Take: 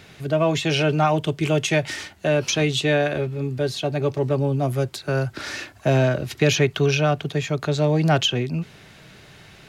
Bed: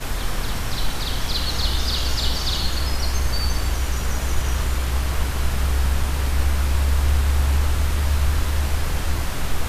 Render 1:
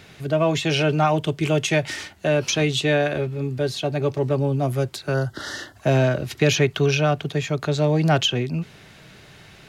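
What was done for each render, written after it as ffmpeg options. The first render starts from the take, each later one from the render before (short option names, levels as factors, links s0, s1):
-filter_complex "[0:a]asettb=1/sr,asplit=3[s0][s1][s2];[s0]atrim=end=5.144[s3];[s1]atrim=start=5.14:end=5.76,asetpts=PTS-STARTPTS,afade=t=in:d=0.004:c=qsin,afade=t=out:st=0.616:d=0.004:c=qsin,asuperstop=centerf=2400:order=8:qfactor=3[s4];[s2]atrim=start=5.756[s5];[s3][s4]acrossfade=d=0.004:c1=hsin:c2=qsin[s6];[s6][s5]acrossfade=d=0.004:c1=qsin:c2=hsin"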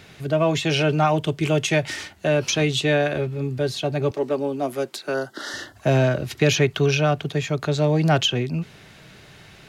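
-filter_complex "[0:a]asettb=1/sr,asplit=3[s0][s1][s2];[s0]atrim=end=4.114[s3];[s1]atrim=start=4.11:end=5.54,asetpts=PTS-STARTPTS,afade=t=in:d=0.004:c=qsin,afade=t=out:st=1.426:d=0.004:c=qsin,highpass=f=220:w=0.5412,highpass=f=220:w=1.3066[s4];[s2]atrim=start=5.536[s5];[s3][s4]acrossfade=d=0.004:c1=hsin:c2=qsin[s6];[s6][s5]acrossfade=d=0.004:c1=qsin:c2=hsin"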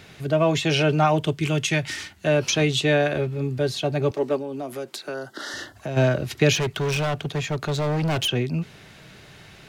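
-filter_complex "[0:a]asettb=1/sr,asplit=3[s0][s1][s2];[s0]atrim=end=1.334[s3];[s1]atrim=start=1.33:end=2.27,asetpts=PTS-STARTPTS,afade=t=in:d=0.004:c=qsin,afade=t=out:st=0.936:d=0.004:c=qsin,equalizer=f=590:w=0.96:g=-7.5[s4];[s2]atrim=start=2.266[s5];[s3][s4]acrossfade=d=0.004:c1=hsin:c2=qsin[s6];[s6][s5]acrossfade=d=0.004:c1=qsin:c2=hsin,asplit=3[s7][s8][s9];[s7]afade=t=out:st=4.37:d=0.02[s10];[s8]acompressor=threshold=0.0355:ratio=3:attack=3.2:release=140:knee=1:detection=peak,afade=t=in:st=4.37:d=0.02,afade=t=out:st=5.96:d=0.02[s11];[s9]afade=t=in:st=5.96:d=0.02[s12];[s10][s11][s12]amix=inputs=3:normalize=0,asettb=1/sr,asplit=3[s13][s14][s15];[s13]atrim=end=6.554[s16];[s14]atrim=start=6.55:end=8.29,asetpts=PTS-STARTPTS,afade=t=in:d=0.004:c=qsin,afade=t=out:st=1.736:d=0.004:c=qsin,volume=11.2,asoftclip=hard,volume=0.0891[s17];[s15]atrim=start=8.286[s18];[s16][s17]acrossfade=d=0.004:c1=hsin:c2=qsin[s19];[s19][s18]acrossfade=d=0.004:c1=qsin:c2=hsin"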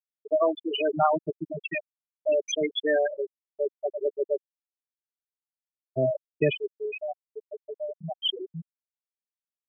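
-af "highpass=f=380:p=1,afftfilt=real='re*gte(hypot(re,im),0.316)':imag='im*gte(hypot(re,im),0.316)':win_size=1024:overlap=0.75"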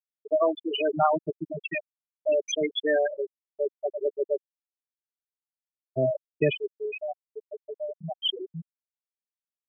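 -af anull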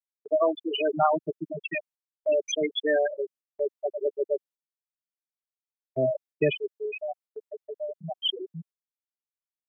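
-af "highpass=130,agate=range=0.2:threshold=0.00282:ratio=16:detection=peak"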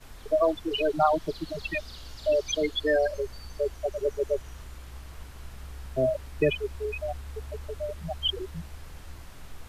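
-filter_complex "[1:a]volume=0.0891[s0];[0:a][s0]amix=inputs=2:normalize=0"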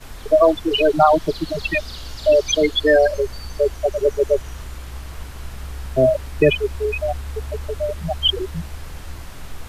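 -af "volume=3.16,alimiter=limit=0.708:level=0:latency=1"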